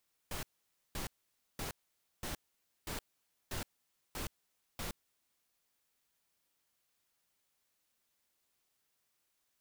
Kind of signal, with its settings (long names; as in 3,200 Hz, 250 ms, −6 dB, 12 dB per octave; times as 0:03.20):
noise bursts pink, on 0.12 s, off 0.52 s, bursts 8, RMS −40 dBFS